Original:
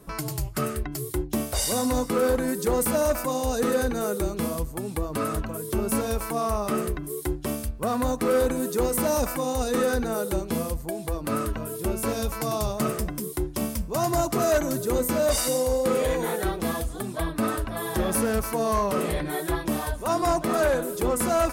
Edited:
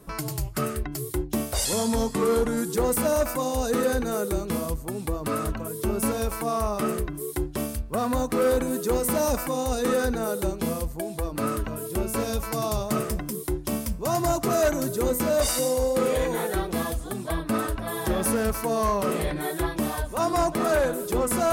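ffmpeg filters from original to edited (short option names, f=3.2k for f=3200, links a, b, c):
-filter_complex "[0:a]asplit=3[a][b][c];[a]atrim=end=1.654[d];[b]atrim=start=1.65:end=2.63,asetpts=PTS-STARTPTS,asetrate=39690,aresample=44100[e];[c]atrim=start=2.626[f];[d][e]acrossfade=d=0.004:c1=hsin:c2=hsin[g];[g][f]acrossfade=d=0.004:c1=hsin:c2=hsin"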